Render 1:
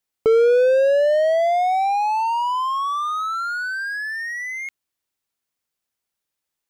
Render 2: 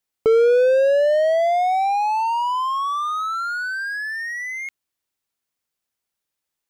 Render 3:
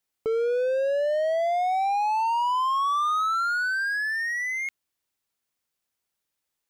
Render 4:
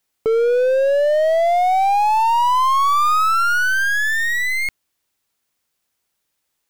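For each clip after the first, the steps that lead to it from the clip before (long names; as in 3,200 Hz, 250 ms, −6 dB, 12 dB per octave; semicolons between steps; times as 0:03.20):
no processing that can be heard
brickwall limiter −19.5 dBFS, peak gain reduction 10.5 dB
stylus tracing distortion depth 0.099 ms; level +8.5 dB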